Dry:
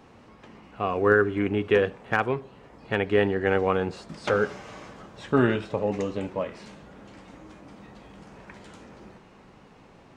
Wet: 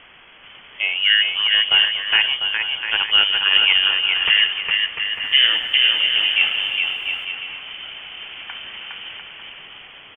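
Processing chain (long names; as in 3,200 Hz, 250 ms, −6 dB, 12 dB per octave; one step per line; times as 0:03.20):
downward expander −44 dBFS
high-pass filter 290 Hz 6 dB per octave
automatic gain control gain up to 15.5 dB
background noise white −36 dBFS
high-frequency loss of the air 420 metres
bouncing-ball delay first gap 410 ms, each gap 0.7×, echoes 5
voice inversion scrambler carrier 3,300 Hz
0:05.05–0:07.25: feedback echo at a low word length 103 ms, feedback 80%, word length 9 bits, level −13 dB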